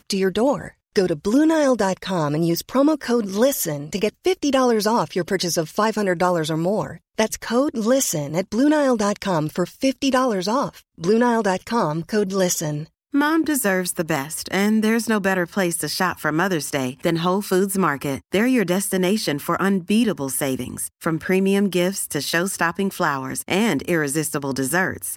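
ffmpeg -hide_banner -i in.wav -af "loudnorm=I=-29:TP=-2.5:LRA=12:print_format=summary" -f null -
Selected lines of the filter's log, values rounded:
Input Integrated:    -21.1 LUFS
Input True Peak:      -4.5 dBTP
Input LRA:             1.5 LU
Input Threshold:     -31.1 LUFS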